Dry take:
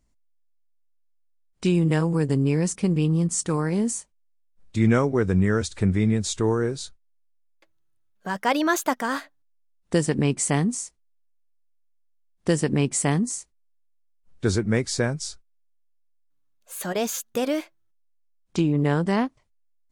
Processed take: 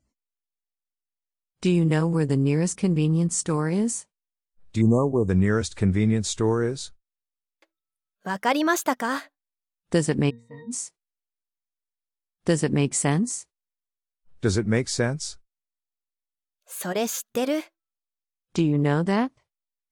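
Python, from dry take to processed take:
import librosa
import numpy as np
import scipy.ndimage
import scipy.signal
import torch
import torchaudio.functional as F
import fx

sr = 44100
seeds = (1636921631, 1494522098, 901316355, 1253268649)

y = fx.spec_erase(x, sr, start_s=4.81, length_s=0.48, low_hz=1200.0, high_hz=6100.0)
y = fx.noise_reduce_blind(y, sr, reduce_db=25)
y = fx.octave_resonator(y, sr, note='A#', decay_s=0.37, at=(10.29, 10.7), fade=0.02)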